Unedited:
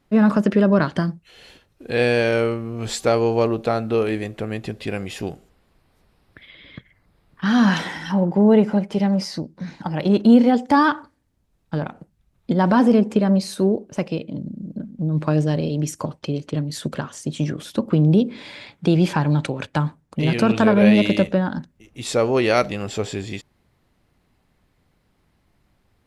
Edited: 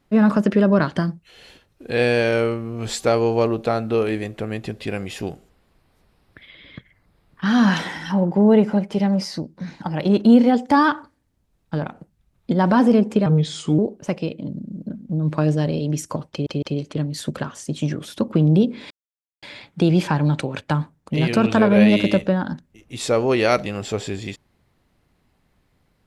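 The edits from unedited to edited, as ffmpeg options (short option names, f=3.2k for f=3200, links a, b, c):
-filter_complex "[0:a]asplit=6[a][b][c][d][e][f];[a]atrim=end=13.264[g];[b]atrim=start=13.26:end=13.68,asetpts=PTS-STARTPTS,asetrate=35280,aresample=44100,atrim=end_sample=23152,asetpts=PTS-STARTPTS[h];[c]atrim=start=13.676:end=16.362[i];[d]atrim=start=16.198:end=16.362[j];[e]atrim=start=16.198:end=18.48,asetpts=PTS-STARTPTS,afade=t=out:st=2.278:d=0.004:c=hsin,apad=pad_dur=0.52[k];[f]atrim=start=18.48,asetpts=PTS-STARTPTS,afade=t=in:d=0.004:c=hsin[l];[g][h]acrossfade=d=0.004:c1=hsin:c2=hsin[m];[m][i]acrossfade=d=0.004:c1=hsin:c2=hsin[n];[n][j]acrossfade=d=0.004:c1=hsin:c2=hsin[o];[k][l]concat=n=2:v=0:a=1[p];[o][p]acrossfade=d=0.004:c1=hsin:c2=hsin"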